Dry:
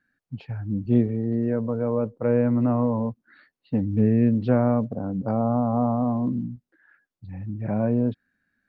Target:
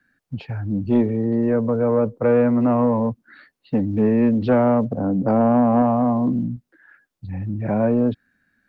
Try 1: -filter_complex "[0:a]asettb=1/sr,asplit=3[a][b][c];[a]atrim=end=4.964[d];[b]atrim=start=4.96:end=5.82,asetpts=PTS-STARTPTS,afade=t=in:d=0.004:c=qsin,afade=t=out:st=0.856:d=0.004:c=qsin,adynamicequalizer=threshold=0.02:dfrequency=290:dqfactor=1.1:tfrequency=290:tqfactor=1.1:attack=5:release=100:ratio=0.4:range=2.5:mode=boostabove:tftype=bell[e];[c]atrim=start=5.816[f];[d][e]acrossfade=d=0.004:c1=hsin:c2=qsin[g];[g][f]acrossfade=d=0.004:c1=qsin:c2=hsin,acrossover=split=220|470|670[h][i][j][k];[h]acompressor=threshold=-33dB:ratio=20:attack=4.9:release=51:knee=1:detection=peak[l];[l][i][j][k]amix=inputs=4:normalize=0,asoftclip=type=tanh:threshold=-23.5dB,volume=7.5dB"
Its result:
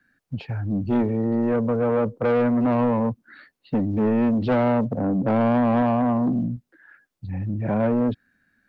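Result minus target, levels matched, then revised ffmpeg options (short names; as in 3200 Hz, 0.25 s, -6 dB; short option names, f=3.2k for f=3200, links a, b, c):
soft clip: distortion +9 dB
-filter_complex "[0:a]asettb=1/sr,asplit=3[a][b][c];[a]atrim=end=4.964[d];[b]atrim=start=4.96:end=5.82,asetpts=PTS-STARTPTS,afade=t=in:d=0.004:c=qsin,afade=t=out:st=0.856:d=0.004:c=qsin,adynamicequalizer=threshold=0.02:dfrequency=290:dqfactor=1.1:tfrequency=290:tqfactor=1.1:attack=5:release=100:ratio=0.4:range=2.5:mode=boostabove:tftype=bell[e];[c]atrim=start=5.816[f];[d][e]acrossfade=d=0.004:c1=hsin:c2=qsin[g];[g][f]acrossfade=d=0.004:c1=qsin:c2=hsin,acrossover=split=220|470|670[h][i][j][k];[h]acompressor=threshold=-33dB:ratio=20:attack=4.9:release=51:knee=1:detection=peak[l];[l][i][j][k]amix=inputs=4:normalize=0,asoftclip=type=tanh:threshold=-15.5dB,volume=7.5dB"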